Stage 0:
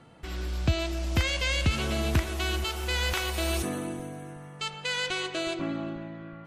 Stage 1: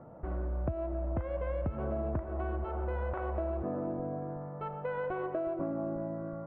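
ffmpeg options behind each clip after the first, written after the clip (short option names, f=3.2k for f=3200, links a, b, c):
-af "lowpass=f=1.2k:w=0.5412,lowpass=f=1.2k:w=1.3066,equalizer=f=590:t=o:w=0.35:g=11,acompressor=threshold=-33dB:ratio=6,volume=2dB"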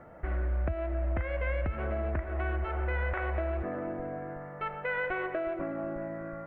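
-af "equalizer=f=125:t=o:w=1:g=-12,equalizer=f=250:t=o:w=1:g=-7,equalizer=f=500:t=o:w=1:g=-5,equalizer=f=1k:t=o:w=1:g=-8,equalizer=f=2k:t=o:w=1:g=12,volume=7.5dB"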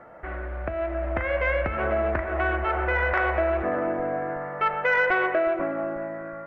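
-filter_complex "[0:a]bandreject=f=77.16:t=h:w=4,bandreject=f=154.32:t=h:w=4,bandreject=f=231.48:t=h:w=4,bandreject=f=308.64:t=h:w=4,bandreject=f=385.8:t=h:w=4,bandreject=f=462.96:t=h:w=4,bandreject=f=540.12:t=h:w=4,bandreject=f=617.28:t=h:w=4,bandreject=f=694.44:t=h:w=4,bandreject=f=771.6:t=h:w=4,bandreject=f=848.76:t=h:w=4,bandreject=f=925.92:t=h:w=4,bandreject=f=1.00308k:t=h:w=4,bandreject=f=1.08024k:t=h:w=4,bandreject=f=1.1574k:t=h:w=4,bandreject=f=1.23456k:t=h:w=4,bandreject=f=1.31172k:t=h:w=4,bandreject=f=1.38888k:t=h:w=4,bandreject=f=1.46604k:t=h:w=4,bandreject=f=1.5432k:t=h:w=4,bandreject=f=1.62036k:t=h:w=4,bandreject=f=1.69752k:t=h:w=4,bandreject=f=1.77468k:t=h:w=4,bandreject=f=1.85184k:t=h:w=4,bandreject=f=1.929k:t=h:w=4,bandreject=f=2.00616k:t=h:w=4,bandreject=f=2.08332k:t=h:w=4,bandreject=f=2.16048k:t=h:w=4,bandreject=f=2.23764k:t=h:w=4,bandreject=f=2.3148k:t=h:w=4,bandreject=f=2.39196k:t=h:w=4,bandreject=f=2.46912k:t=h:w=4,bandreject=f=2.54628k:t=h:w=4,dynaudnorm=f=210:g=9:m=6dB,asplit=2[a][b];[b]highpass=f=720:p=1,volume=13dB,asoftclip=type=tanh:threshold=-7dB[c];[a][c]amix=inputs=2:normalize=0,lowpass=f=2.6k:p=1,volume=-6dB"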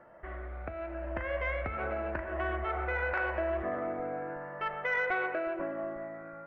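-af "afftfilt=real='re*pow(10,6/40*sin(2*PI*(1.3*log(max(b,1)*sr/1024/100)/log(2)-(0.89)*(pts-256)/sr)))':imag='im*pow(10,6/40*sin(2*PI*(1.3*log(max(b,1)*sr/1024/100)/log(2)-(0.89)*(pts-256)/sr)))':win_size=1024:overlap=0.75,volume=-9dB"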